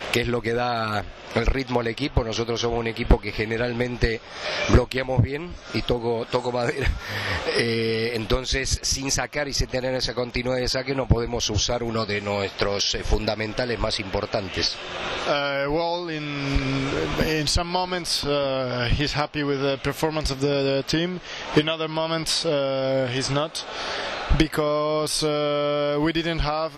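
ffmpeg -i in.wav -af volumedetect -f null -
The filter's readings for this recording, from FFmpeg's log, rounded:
mean_volume: -24.1 dB
max_volume: -8.1 dB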